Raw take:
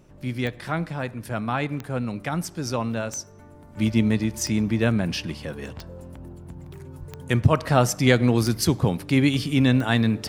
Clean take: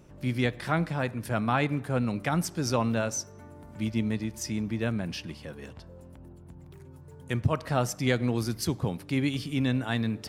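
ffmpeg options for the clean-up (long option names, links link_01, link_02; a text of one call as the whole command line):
ffmpeg -i in.wav -filter_complex "[0:a]adeclick=threshold=4,asplit=3[link_01][link_02][link_03];[link_01]afade=type=out:start_time=6.99:duration=0.02[link_04];[link_02]highpass=frequency=140:width=0.5412,highpass=frequency=140:width=1.3066,afade=type=in:start_time=6.99:duration=0.02,afade=type=out:start_time=7.11:duration=0.02[link_05];[link_03]afade=type=in:start_time=7.11:duration=0.02[link_06];[link_04][link_05][link_06]amix=inputs=3:normalize=0,agate=range=-21dB:threshold=-35dB,asetnsamples=nb_out_samples=441:pad=0,asendcmd='3.77 volume volume -8dB',volume=0dB" out.wav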